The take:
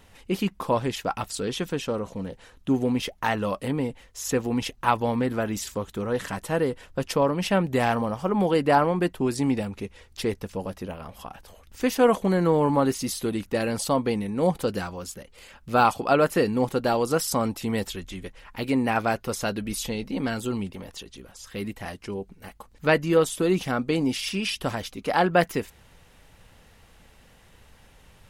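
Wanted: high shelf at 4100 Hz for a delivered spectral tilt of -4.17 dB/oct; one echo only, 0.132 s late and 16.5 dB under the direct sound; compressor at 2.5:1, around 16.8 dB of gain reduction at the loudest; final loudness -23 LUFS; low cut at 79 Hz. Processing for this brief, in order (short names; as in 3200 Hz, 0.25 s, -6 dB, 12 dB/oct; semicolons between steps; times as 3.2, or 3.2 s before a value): HPF 79 Hz; high shelf 4100 Hz +5 dB; compressor 2.5:1, threshold -41 dBFS; echo 0.132 s -16.5 dB; gain +16 dB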